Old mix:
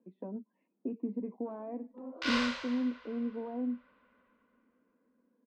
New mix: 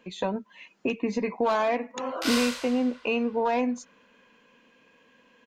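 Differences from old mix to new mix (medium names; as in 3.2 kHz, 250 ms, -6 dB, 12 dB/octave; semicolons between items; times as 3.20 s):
speech: remove ladder band-pass 290 Hz, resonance 45%; master: remove distance through air 190 m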